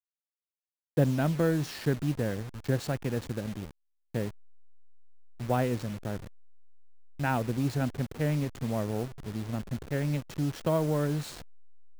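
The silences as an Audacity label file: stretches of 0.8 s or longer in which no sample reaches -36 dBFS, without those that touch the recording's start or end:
4.290000	5.400000	silence
6.270000	7.200000	silence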